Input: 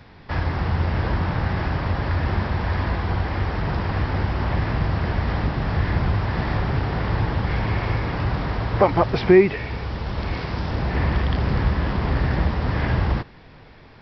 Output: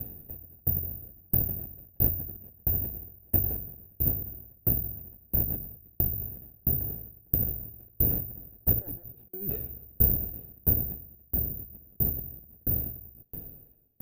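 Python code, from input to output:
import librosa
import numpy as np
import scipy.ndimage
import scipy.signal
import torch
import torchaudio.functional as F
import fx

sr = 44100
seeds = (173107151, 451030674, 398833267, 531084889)

y = fx.lower_of_two(x, sr, delay_ms=0.34)
y = fx.over_compress(y, sr, threshold_db=-28.0, ratio=-1.0)
y = np.convolve(y, np.full(41, 1.0 / 41))[:len(y)]
y = (np.kron(y[::3], np.eye(3)[0]) * 3)[:len(y)]
y = fx.tremolo_decay(y, sr, direction='decaying', hz=1.5, depth_db=40)
y = y * librosa.db_to_amplitude(2.0)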